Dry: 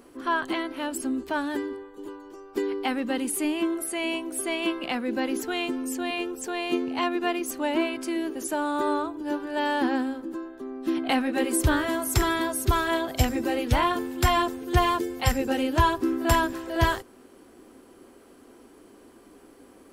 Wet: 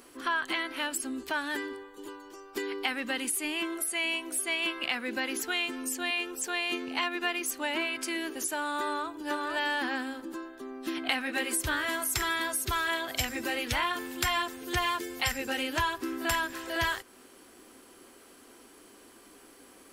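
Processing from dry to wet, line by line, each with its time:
8.84–9.28 echo throw 0.46 s, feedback 15%, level -3 dB
whole clip: tilt shelf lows -6.5 dB, about 1100 Hz; compressor 2.5:1, threshold -32 dBFS; dynamic EQ 1900 Hz, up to +5 dB, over -44 dBFS, Q 1

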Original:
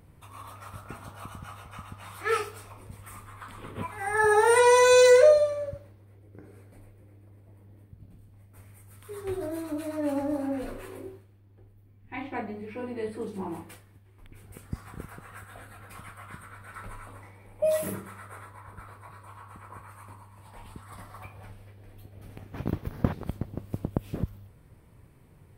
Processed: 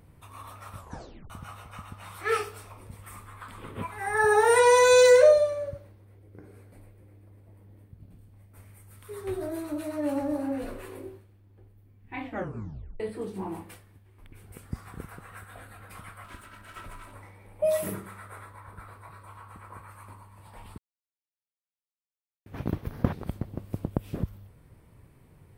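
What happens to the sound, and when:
0.76 tape stop 0.54 s
12.23 tape stop 0.77 s
16.24–17.15 minimum comb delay 3.1 ms
20.78–22.46 mute

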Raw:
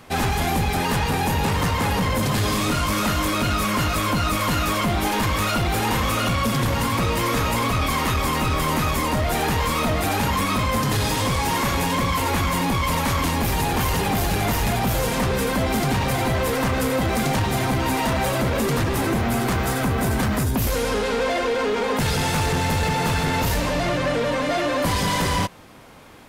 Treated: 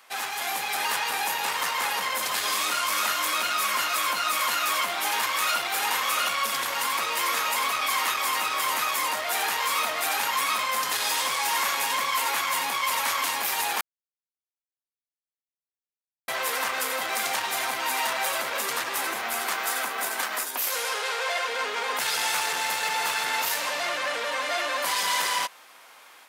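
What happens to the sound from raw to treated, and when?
13.81–16.28 mute
19.42–21.47 HPF 140 Hz -> 440 Hz 24 dB/oct
whole clip: HPF 970 Hz 12 dB/oct; high shelf 11000 Hz +4 dB; AGC gain up to 4.5 dB; gain -4.5 dB

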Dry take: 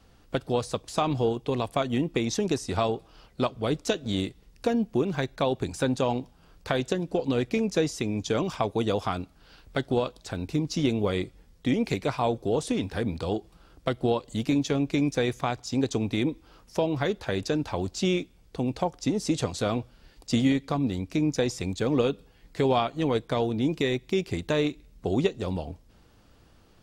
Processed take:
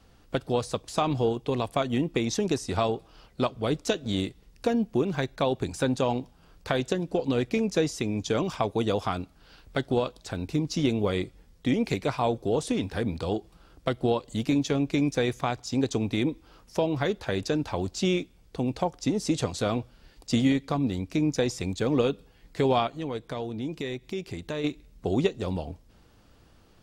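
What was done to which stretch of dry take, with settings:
22.87–24.64 compressor 1.5:1, threshold -41 dBFS

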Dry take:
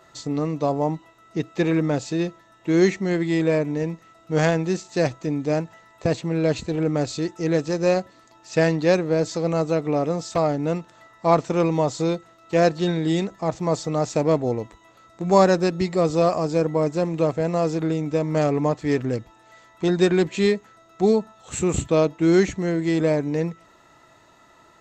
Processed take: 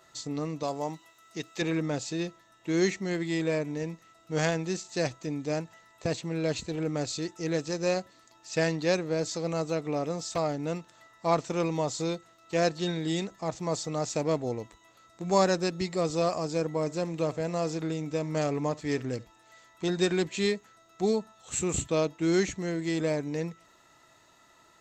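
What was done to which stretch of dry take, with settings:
0.63–1.62 tilt +2 dB/oct
16.79–20.2 echo 70 ms -22 dB
whole clip: high shelf 2600 Hz +9 dB; gain -8.5 dB

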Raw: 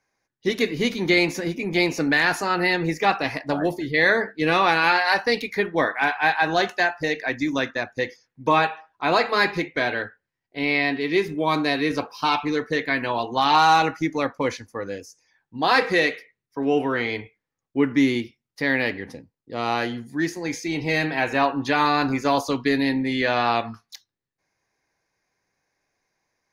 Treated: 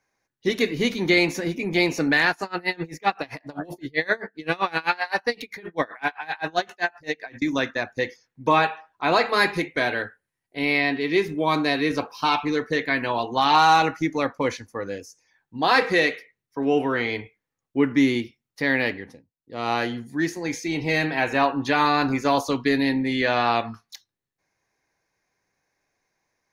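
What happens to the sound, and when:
2.3–7.42 dB-linear tremolo 7.7 Hz, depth 27 dB
9.33–10.81 bell 10000 Hz +11 dB 0.51 oct
18.87–19.72 dip -14.5 dB, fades 0.37 s
whole clip: notch 4900 Hz, Q 22

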